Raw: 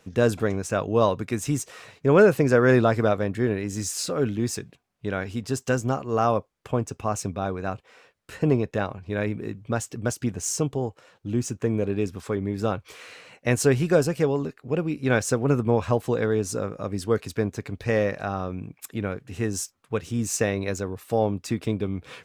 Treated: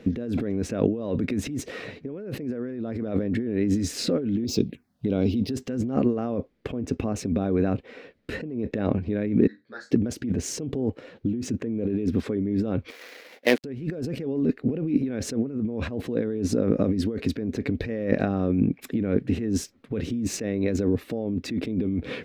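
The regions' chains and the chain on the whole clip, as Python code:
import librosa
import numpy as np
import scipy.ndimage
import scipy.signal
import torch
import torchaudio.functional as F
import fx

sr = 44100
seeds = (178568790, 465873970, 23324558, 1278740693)

y = fx.chain(x, sr, fx.highpass(hz=42.0, slope=12),
    fx.high_shelf(hz=4200.0, db=10.0),
    fx.env_phaser(low_hz=300.0, high_hz=1800.0, full_db=-26.0), at=(4.44, 5.5))
y = fx.chain(y, sr, fx.double_bandpass(hz=2700.0, octaves=1.4),
    fx.room_flutter(wall_m=4.0, rt60_s=0.24),
    fx.ensemble(), at=(9.47, 9.91))
y = fx.chain(y, sr, fx.dead_time(dead_ms=0.16),
    fx.highpass(hz=670.0, slope=12),
    fx.peak_eq(hz=14000.0, db=5.0, octaves=1.6), at=(12.9, 13.64))
y = fx.tilt_shelf(y, sr, db=8.5, hz=710.0)
y = fx.over_compress(y, sr, threshold_db=-28.0, ratio=-1.0)
y = fx.graphic_eq(y, sr, hz=(125, 250, 500, 1000, 2000, 4000, 8000), db=(-4, 11, 5, -4, 10, 8, -5))
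y = y * librosa.db_to_amplitude(-4.0)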